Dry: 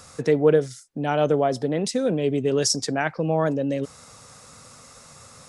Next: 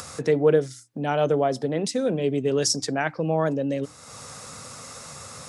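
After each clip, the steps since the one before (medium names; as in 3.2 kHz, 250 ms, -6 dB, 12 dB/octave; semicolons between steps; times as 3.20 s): high-pass 63 Hz; upward compressor, threshold -30 dBFS; hum notches 60/120/180/240/300 Hz; trim -1 dB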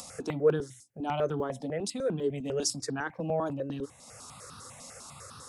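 stepped phaser 10 Hz 410–2100 Hz; trim -4 dB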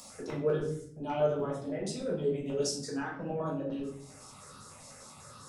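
simulated room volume 99 m³, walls mixed, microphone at 1.4 m; trim -9 dB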